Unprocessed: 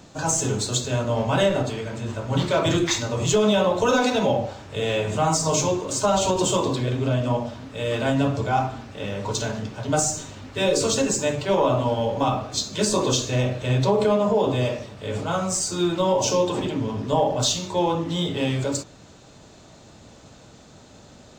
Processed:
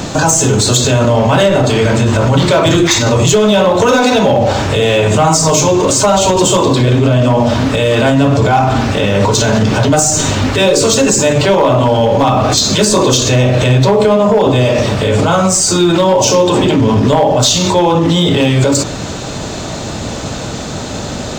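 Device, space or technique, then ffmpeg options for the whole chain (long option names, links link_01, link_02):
loud club master: -af "acompressor=threshold=-23dB:ratio=2,asoftclip=type=hard:threshold=-18dB,alimiter=level_in=29dB:limit=-1dB:release=50:level=0:latency=1,volume=-2.5dB"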